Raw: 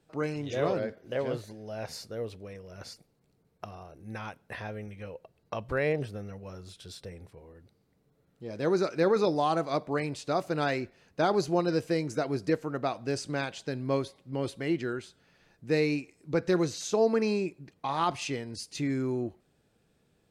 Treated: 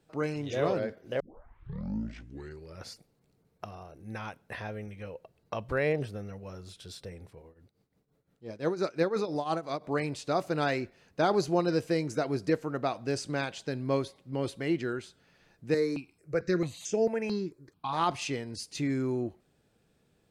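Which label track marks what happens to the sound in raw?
1.200000	1.200000	tape start 1.68 s
7.420000	9.840000	tremolo triangle 5.8 Hz, depth 85%
15.740000	17.930000	step phaser 4.5 Hz 730–4000 Hz

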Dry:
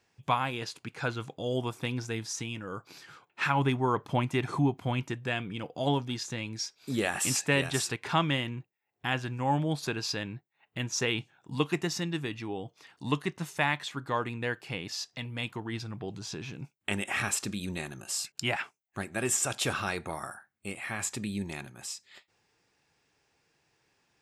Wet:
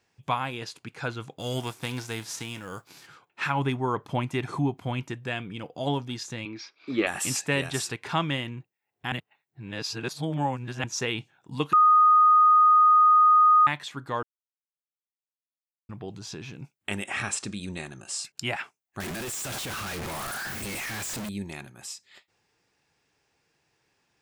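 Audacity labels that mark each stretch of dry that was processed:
1.380000	3.060000	spectral whitening exponent 0.6
6.450000	7.070000	speaker cabinet 150–4300 Hz, peaks and dips at 160 Hz -9 dB, 320 Hz +9 dB, 600 Hz +3 dB, 1200 Hz +10 dB, 2300 Hz +9 dB
9.120000	10.840000	reverse
11.730000	13.670000	bleep 1240 Hz -14 dBFS
14.230000	15.890000	mute
17.060000	18.250000	steep low-pass 9900 Hz 48 dB/oct
19.000000	21.290000	infinite clipping

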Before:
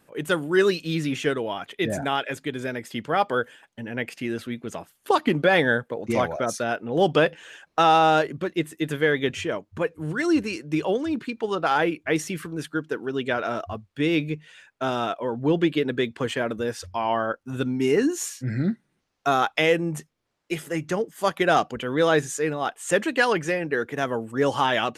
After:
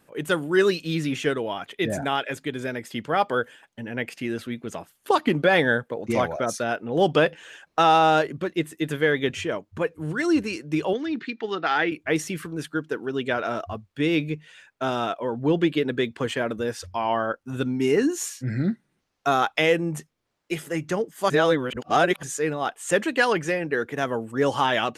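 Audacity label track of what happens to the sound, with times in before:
10.930000	11.920000	speaker cabinet 210–5700 Hz, peaks and dips at 550 Hz -10 dB, 1000 Hz -6 dB, 1900 Hz +7 dB, 3800 Hz +3 dB
21.300000	22.230000	reverse

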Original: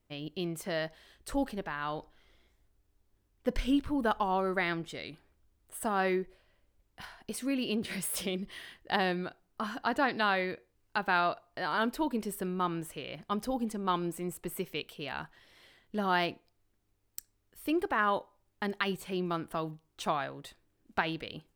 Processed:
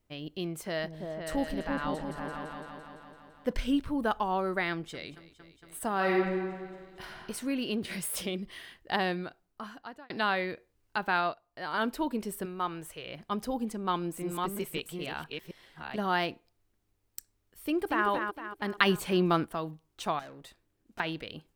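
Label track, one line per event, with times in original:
0.590000	3.530000	repeats that get brighter 0.169 s, low-pass from 200 Hz, each repeat up 2 oct, level 0 dB
4.700000	5.100000	echo throw 0.23 s, feedback 85%, level -17.5 dB
5.950000	7.170000	reverb throw, RT60 1.8 s, DRR -1 dB
9.130000	10.100000	fade out
11.160000	11.740000	upward expander, over -45 dBFS
12.450000	13.060000	bell 230 Hz -13.5 dB
13.720000	16.270000	reverse delay 0.448 s, level -3 dB
17.630000	18.070000	echo throw 0.23 s, feedback 45%, level -5.5 dB
18.780000	19.450000	gain +7.5 dB
20.190000	21.000000	tube stage drive 43 dB, bias 0.4

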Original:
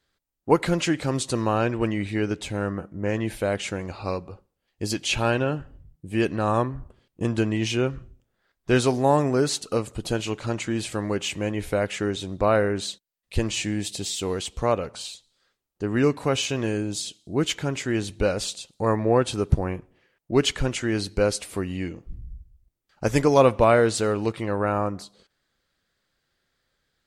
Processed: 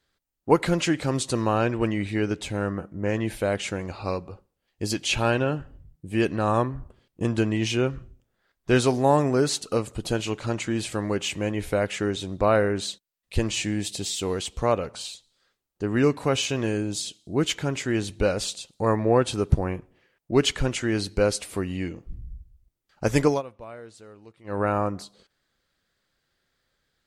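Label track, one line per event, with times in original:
23.270000	24.590000	dip -23.5 dB, fades 0.15 s

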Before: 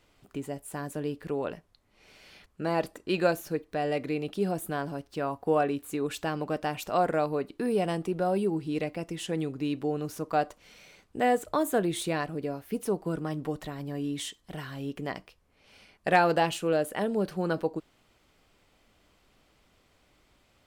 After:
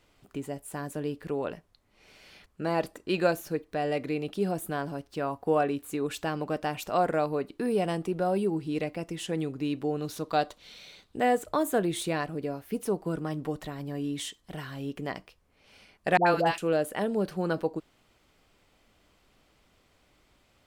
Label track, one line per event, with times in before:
10.020000	11.170000	bell 3800 Hz +13 dB 0.5 oct
16.170000	16.580000	dispersion highs, late by 96 ms, half as late at 730 Hz

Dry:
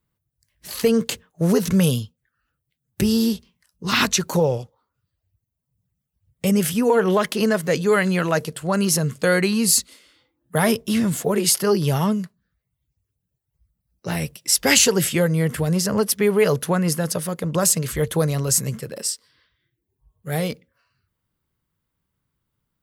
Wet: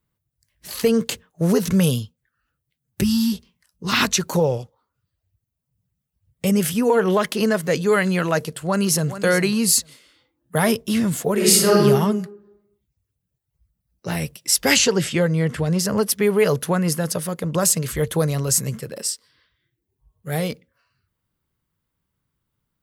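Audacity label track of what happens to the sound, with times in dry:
3.040000	3.330000	spectral delete 280–880 Hz
8.430000	9.220000	echo throw 0.42 s, feedback 10%, level -12 dB
11.340000	11.780000	reverb throw, RT60 0.94 s, DRR -4.5 dB
14.760000	15.790000	LPF 6500 Hz

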